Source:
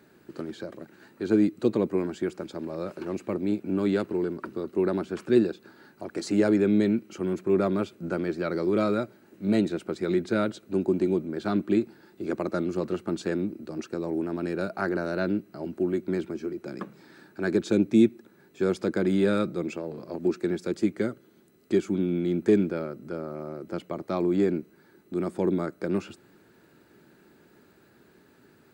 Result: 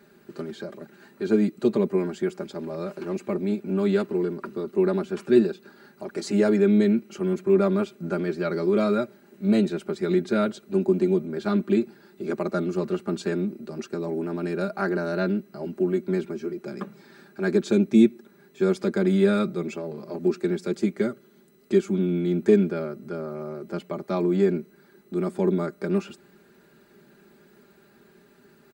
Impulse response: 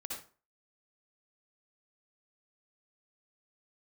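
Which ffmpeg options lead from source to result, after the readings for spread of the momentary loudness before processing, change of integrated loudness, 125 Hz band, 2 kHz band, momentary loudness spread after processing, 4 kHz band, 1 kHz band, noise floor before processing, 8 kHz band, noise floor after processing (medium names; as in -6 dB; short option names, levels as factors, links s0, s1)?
13 LU, +2.5 dB, +3.5 dB, +1.5 dB, 14 LU, +2.0 dB, +1.5 dB, -59 dBFS, no reading, -57 dBFS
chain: -af "aecho=1:1:5:0.71"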